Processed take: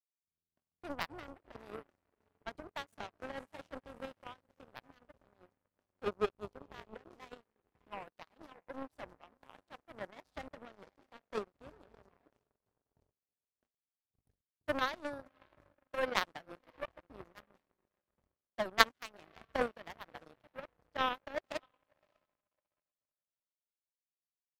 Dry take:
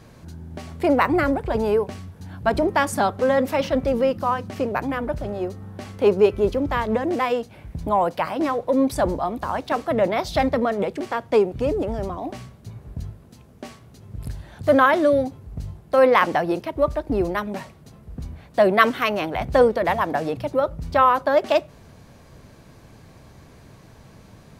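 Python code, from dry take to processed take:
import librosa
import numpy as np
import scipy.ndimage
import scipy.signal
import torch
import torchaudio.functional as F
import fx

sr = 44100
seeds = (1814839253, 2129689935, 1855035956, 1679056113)

y = fx.echo_diffused(x, sr, ms=595, feedback_pct=52, wet_db=-11.0)
y = fx.power_curve(y, sr, exponent=3.0)
y = y * 10.0 ** (-2.0 / 20.0)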